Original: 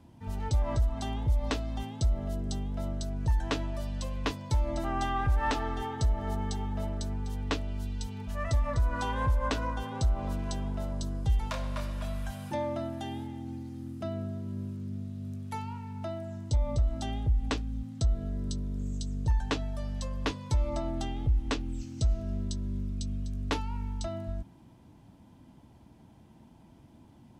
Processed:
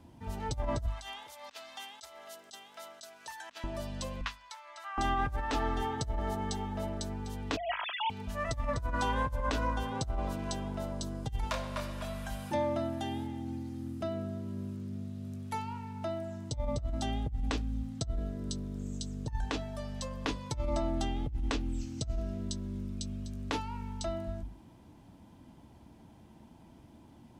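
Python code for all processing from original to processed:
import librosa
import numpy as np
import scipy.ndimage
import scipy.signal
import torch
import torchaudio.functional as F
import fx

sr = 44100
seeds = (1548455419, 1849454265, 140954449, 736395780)

y = fx.chain(x, sr, fx.highpass(hz=1300.0, slope=12),
    fx.over_compress(threshold_db=-46.0, ratio=-0.5), at=(0.86, 3.64))
y = fx.chain(y, sr, fx.highpass(hz=1200.0, slope=24),
    fx.tilt_eq(slope=-3.0), at=(4.21, 4.98))
y = fx.chain(y, sr, fx.sine_speech(),
    fx.comb(ms=3.1, depth=0.6), at=(7.57, 8.1))
y = fx.peak_eq(y, sr, hz=130.0, db=-3.0, octaves=0.64)
y = fx.hum_notches(y, sr, base_hz=50, count=5)
y = fx.over_compress(y, sr, threshold_db=-30.0, ratio=-0.5)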